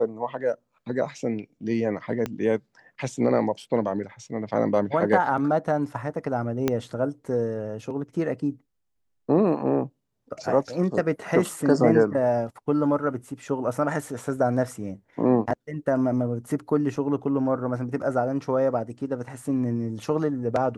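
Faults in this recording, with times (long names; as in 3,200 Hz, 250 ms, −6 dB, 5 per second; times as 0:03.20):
0:02.26: click −15 dBFS
0:06.68: click −9 dBFS
0:16.96: drop-out 3.5 ms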